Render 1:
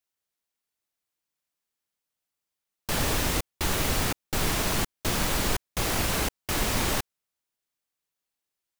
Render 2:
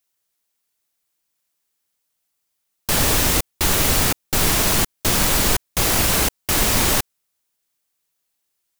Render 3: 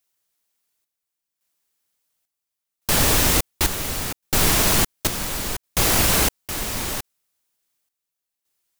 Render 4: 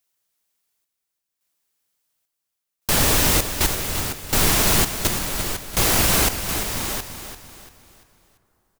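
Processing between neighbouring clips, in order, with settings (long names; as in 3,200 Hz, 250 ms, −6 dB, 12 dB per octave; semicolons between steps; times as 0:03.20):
high-shelf EQ 5,300 Hz +6.5 dB; level +6.5 dB
square-wave tremolo 0.71 Hz, depth 65%, duty 60%
repeating echo 342 ms, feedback 40%, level −10 dB; dense smooth reverb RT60 4.2 s, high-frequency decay 0.65×, DRR 20 dB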